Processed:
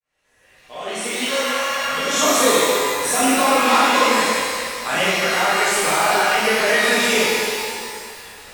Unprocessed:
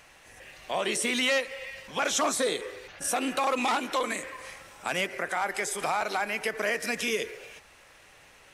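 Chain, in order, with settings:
fade in at the beginning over 2.59 s
healed spectral selection 0:01.30–0:02.13, 590–3,000 Hz after
reverb with rising layers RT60 2.1 s, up +12 semitones, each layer −8 dB, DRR −12 dB

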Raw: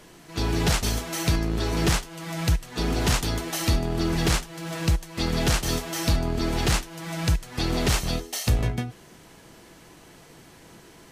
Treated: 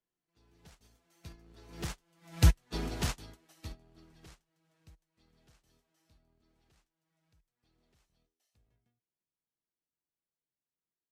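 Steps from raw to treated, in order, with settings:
source passing by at 0:02.58, 8 m/s, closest 3.3 metres
expander for the loud parts 2.5 to 1, over −38 dBFS
level +2 dB

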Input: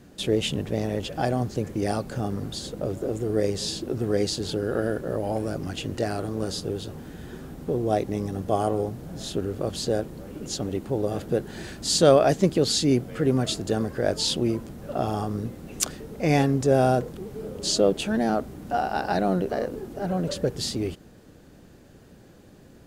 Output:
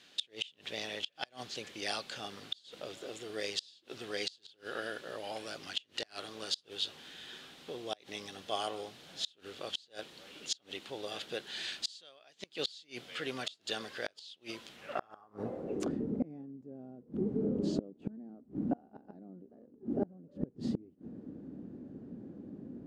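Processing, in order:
band-pass filter sweep 3,400 Hz → 250 Hz, 0:14.69–0:15.99
gate with flip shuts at −30 dBFS, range −31 dB
level +9.5 dB

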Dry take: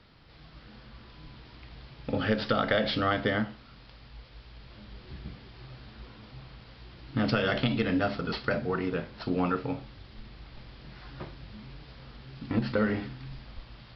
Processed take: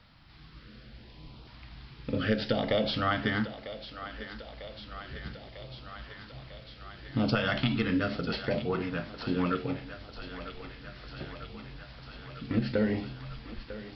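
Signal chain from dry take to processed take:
auto-filter notch saw up 0.68 Hz 350–2,000 Hz
feedback echo with a high-pass in the loop 948 ms, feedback 77%, high-pass 340 Hz, level −12 dB

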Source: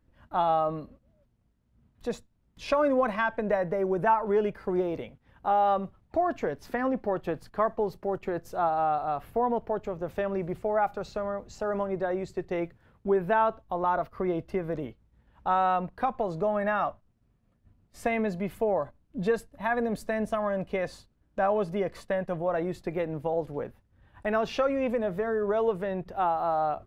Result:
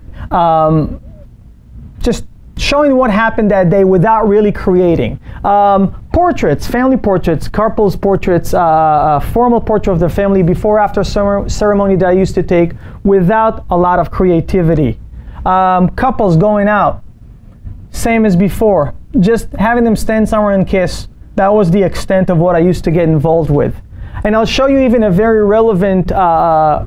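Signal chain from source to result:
low-shelf EQ 210 Hz +10.5 dB
downward compressor 4 to 1, threshold −28 dBFS, peak gain reduction 9 dB
boost into a limiter +26 dB
level −1 dB

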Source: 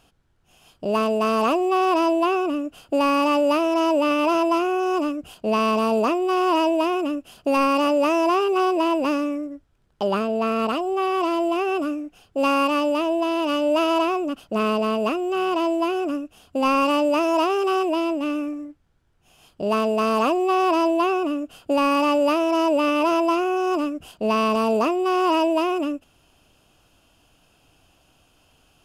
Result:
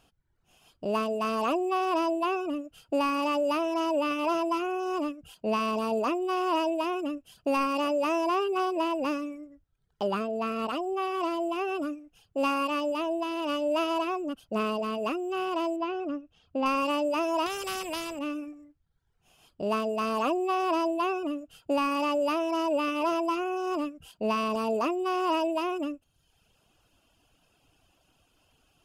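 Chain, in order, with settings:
reverb reduction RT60 0.83 s
0:15.76–0:16.66: high-frequency loss of the air 160 metres
0:17.46–0:18.19: every bin compressed towards the loudest bin 2 to 1
level −5.5 dB

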